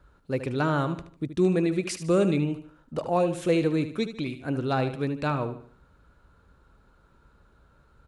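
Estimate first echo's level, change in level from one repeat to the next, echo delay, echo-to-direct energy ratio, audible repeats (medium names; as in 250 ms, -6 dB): -11.0 dB, -8.5 dB, 75 ms, -10.5 dB, 3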